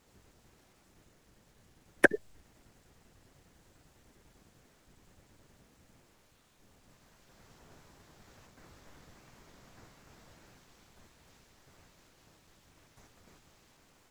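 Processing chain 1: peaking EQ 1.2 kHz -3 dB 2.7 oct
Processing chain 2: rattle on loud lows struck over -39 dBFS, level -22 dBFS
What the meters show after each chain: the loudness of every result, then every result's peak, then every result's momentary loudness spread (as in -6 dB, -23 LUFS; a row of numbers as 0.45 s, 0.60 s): -30.5 LUFS, -28.0 LUFS; -7.5 dBFS, -5.0 dBFS; 9 LU, 9 LU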